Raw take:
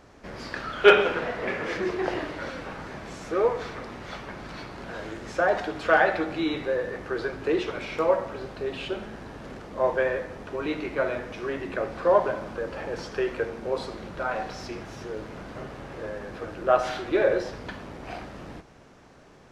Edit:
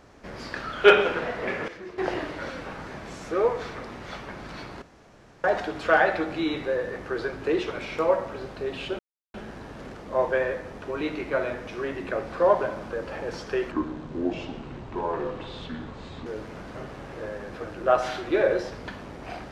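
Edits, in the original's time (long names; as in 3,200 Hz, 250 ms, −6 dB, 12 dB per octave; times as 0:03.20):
0:01.68–0:01.98: clip gain −12 dB
0:04.82–0:05.44: fill with room tone
0:08.99: splice in silence 0.35 s
0:13.36–0:15.07: play speed 67%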